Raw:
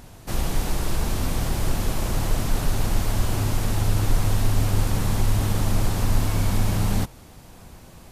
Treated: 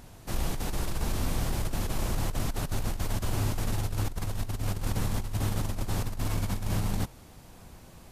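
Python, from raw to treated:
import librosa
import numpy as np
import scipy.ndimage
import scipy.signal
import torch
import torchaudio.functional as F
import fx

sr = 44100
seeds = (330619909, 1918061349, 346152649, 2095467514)

y = fx.over_compress(x, sr, threshold_db=-21.0, ratio=-0.5)
y = y * librosa.db_to_amplitude(-6.5)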